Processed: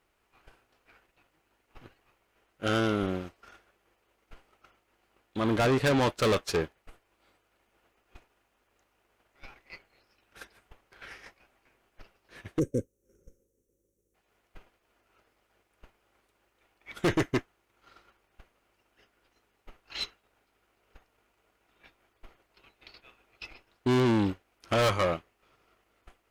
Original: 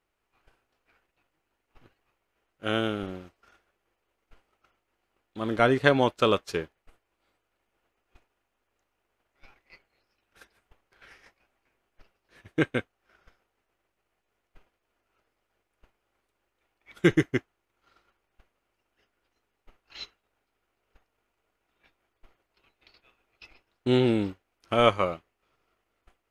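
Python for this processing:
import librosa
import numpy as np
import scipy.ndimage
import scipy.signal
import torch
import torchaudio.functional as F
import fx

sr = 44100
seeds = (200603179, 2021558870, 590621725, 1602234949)

y = fx.tube_stage(x, sr, drive_db=29.0, bias=0.3)
y = fx.spec_box(y, sr, start_s=12.59, length_s=1.56, low_hz=570.0, high_hz=5500.0, gain_db=-28)
y = F.gain(torch.from_numpy(y), 7.5).numpy()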